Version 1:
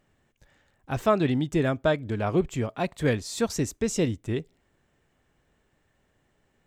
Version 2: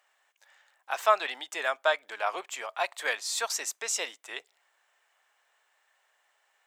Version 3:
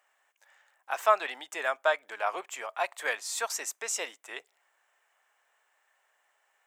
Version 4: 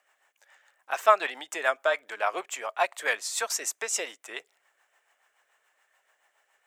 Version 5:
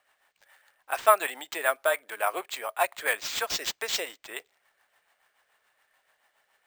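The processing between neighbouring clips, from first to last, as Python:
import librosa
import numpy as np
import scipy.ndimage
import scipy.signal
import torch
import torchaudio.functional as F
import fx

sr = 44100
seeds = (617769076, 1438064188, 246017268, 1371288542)

y1 = scipy.signal.sosfilt(scipy.signal.butter(4, 750.0, 'highpass', fs=sr, output='sos'), x)
y1 = F.gain(torch.from_numpy(y1), 4.0).numpy()
y2 = fx.peak_eq(y1, sr, hz=4100.0, db=-6.5, octaves=0.98)
y3 = fx.rotary(y2, sr, hz=7.0)
y3 = F.gain(torch.from_numpy(y3), 5.5).numpy()
y4 = np.repeat(y3[::4], 4)[:len(y3)]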